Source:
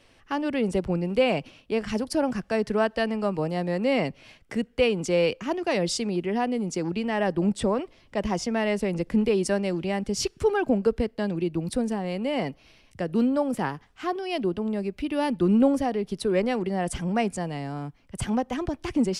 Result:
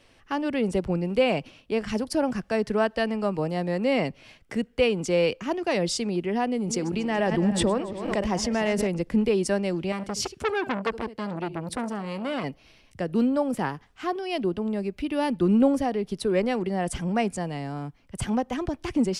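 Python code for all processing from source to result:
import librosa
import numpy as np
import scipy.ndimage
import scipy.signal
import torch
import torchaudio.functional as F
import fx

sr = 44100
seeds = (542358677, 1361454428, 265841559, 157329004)

y = fx.chain(x, sr, fx.reverse_delay_fb(ms=141, feedback_pct=57, wet_db=-12.0),
    fx.pre_swell(db_per_s=53.0), at=(6.52, 8.87))
y = fx.chain(y, sr, fx.highpass(hz=41.0, slope=12),
    fx.echo_single(ms=71, db=-17.0),
    fx.transformer_sat(knee_hz=1600.0), at=(9.92, 12.44))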